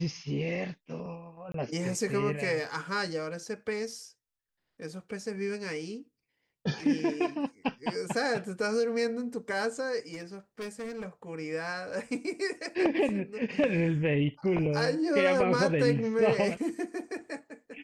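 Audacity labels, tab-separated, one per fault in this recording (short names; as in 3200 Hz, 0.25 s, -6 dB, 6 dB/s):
1.520000	1.540000	gap 23 ms
10.130000	11.080000	clipped -34 dBFS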